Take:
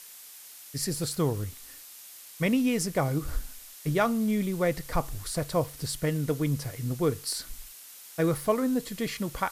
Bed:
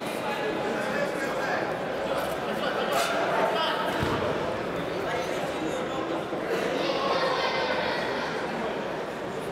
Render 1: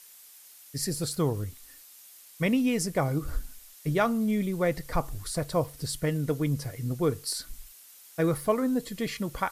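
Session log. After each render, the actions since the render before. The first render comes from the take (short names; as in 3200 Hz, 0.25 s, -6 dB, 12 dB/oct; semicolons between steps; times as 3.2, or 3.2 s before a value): denoiser 6 dB, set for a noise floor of -48 dBFS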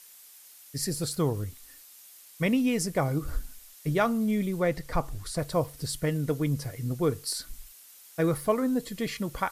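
4.6–5.39 high shelf 8700 Hz -6 dB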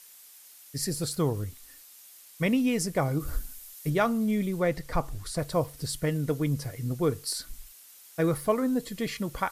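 3.2–3.9 high shelf 8400 Hz +8 dB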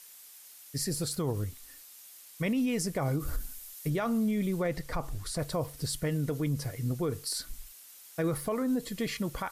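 limiter -22.5 dBFS, peak gain reduction 10.5 dB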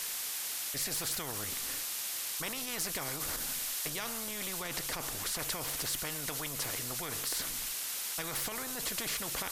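in parallel at 0 dB: limiter -34 dBFS, peak gain reduction 11.5 dB; on the sum: spectral compressor 4:1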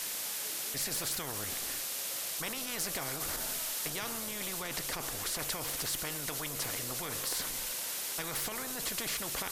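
add bed -24.5 dB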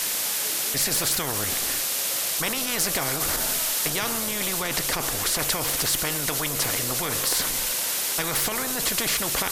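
gain +11 dB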